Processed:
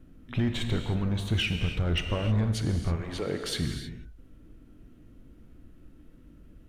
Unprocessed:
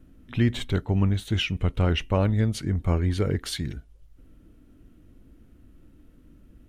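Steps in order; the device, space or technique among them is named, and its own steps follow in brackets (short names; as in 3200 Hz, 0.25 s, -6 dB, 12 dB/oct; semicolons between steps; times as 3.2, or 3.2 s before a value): limiter into clipper (limiter -16.5 dBFS, peak gain reduction 7.5 dB; hard clip -21.5 dBFS, distortion -15 dB); 2.95–3.42 HPF 590 Hz -> 170 Hz 12 dB/oct; high shelf 6700 Hz -4.5 dB; non-linear reverb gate 0.34 s flat, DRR 5 dB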